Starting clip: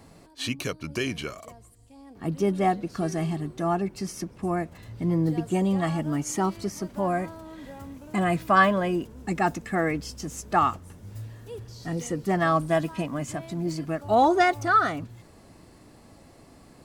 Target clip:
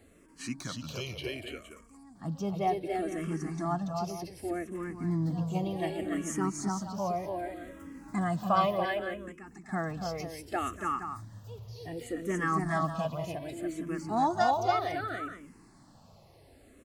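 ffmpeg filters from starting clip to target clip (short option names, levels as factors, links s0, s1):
-filter_complex "[0:a]asettb=1/sr,asplit=3[s0][s1][s2];[s0]atrim=end=8.854[s3];[s1]atrim=start=8.85:end=9.69,asetpts=PTS-STARTPTS,afade=t=in:d=0.004:c=qsin,afade=t=out:st=0.836:d=0.004:c=qsin,acompressor=threshold=0.01:ratio=5[s4];[s2]atrim=start=9.686[s5];[s3][s4]acrossfade=d=0.004:c1=hsin:c2=qsin[s6];[s6][s5]acrossfade=d=0.004:c1=qsin:c2=hsin,asplit=2[s7][s8];[s8]aecho=0:1:237|285|465:0.15|0.668|0.266[s9];[s7][s9]amix=inputs=2:normalize=0,asplit=2[s10][s11];[s11]afreqshift=-0.66[s12];[s10][s12]amix=inputs=2:normalize=1,volume=0.596"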